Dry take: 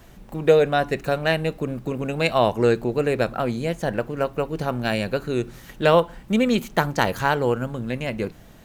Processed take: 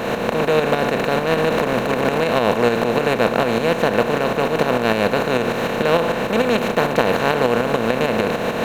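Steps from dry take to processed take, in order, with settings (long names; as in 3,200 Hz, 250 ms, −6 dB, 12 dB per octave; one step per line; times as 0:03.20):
compressor on every frequency bin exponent 0.2
0:01.20–0:02.25: transient designer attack −10 dB, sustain +10 dB
shaped tremolo saw up 6.7 Hz, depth 55%
level −3.5 dB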